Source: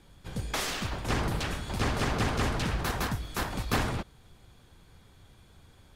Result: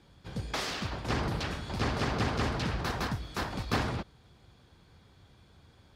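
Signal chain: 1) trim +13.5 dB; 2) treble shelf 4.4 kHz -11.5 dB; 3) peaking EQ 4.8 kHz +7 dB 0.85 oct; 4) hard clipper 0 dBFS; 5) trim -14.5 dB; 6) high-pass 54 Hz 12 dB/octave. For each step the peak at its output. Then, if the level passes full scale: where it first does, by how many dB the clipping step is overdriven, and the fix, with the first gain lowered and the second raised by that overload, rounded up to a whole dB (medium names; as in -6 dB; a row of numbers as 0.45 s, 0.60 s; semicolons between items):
-1.0 dBFS, -2.0 dBFS, -1.5 dBFS, -1.5 dBFS, -16.0 dBFS, -16.5 dBFS; nothing clips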